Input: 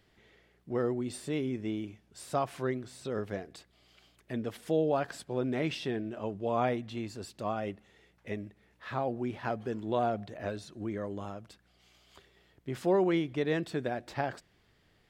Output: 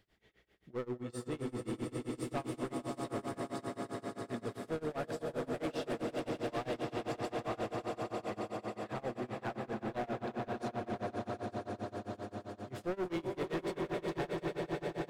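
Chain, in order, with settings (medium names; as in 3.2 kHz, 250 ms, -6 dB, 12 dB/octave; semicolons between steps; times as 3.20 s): echo with a slow build-up 90 ms, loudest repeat 8, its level -8.5 dB; overload inside the chain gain 27 dB; tremolo 7.6 Hz, depth 96%; trim -3.5 dB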